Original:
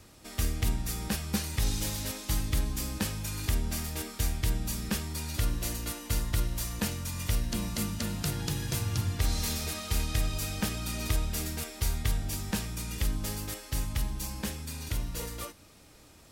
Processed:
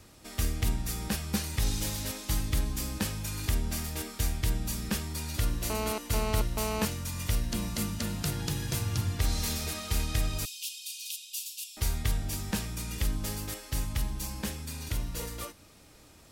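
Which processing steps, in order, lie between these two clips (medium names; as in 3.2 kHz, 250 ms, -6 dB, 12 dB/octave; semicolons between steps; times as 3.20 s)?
5.70–6.85 s: mobile phone buzz -33 dBFS; 10.45–11.77 s: steep high-pass 2.6 kHz 96 dB/octave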